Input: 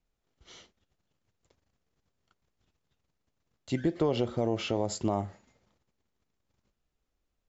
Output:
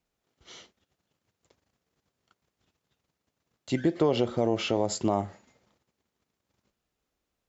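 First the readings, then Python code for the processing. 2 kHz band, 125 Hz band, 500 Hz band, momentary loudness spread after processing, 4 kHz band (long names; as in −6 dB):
+4.0 dB, +0.5 dB, +3.5 dB, 6 LU, +4.0 dB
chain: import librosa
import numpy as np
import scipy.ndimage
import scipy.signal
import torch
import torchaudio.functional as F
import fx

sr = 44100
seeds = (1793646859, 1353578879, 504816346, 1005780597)

y = fx.highpass(x, sr, hz=140.0, slope=6)
y = y * 10.0 ** (4.0 / 20.0)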